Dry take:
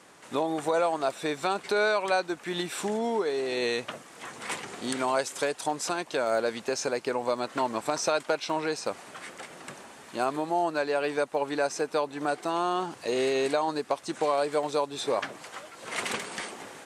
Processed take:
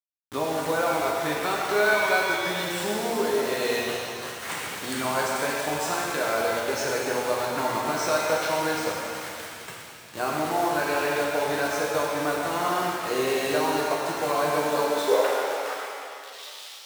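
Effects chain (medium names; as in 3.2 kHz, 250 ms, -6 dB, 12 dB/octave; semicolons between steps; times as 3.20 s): tape stop on the ending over 1.85 s; peaking EQ 1.6 kHz +5 dB 0.91 oct; bit crusher 6-bit; high-pass sweep 93 Hz -> 3.5 kHz, 14.24–16.25 s; pitch-shifted reverb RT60 2.3 s, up +7 st, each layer -8 dB, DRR -3.5 dB; trim -4 dB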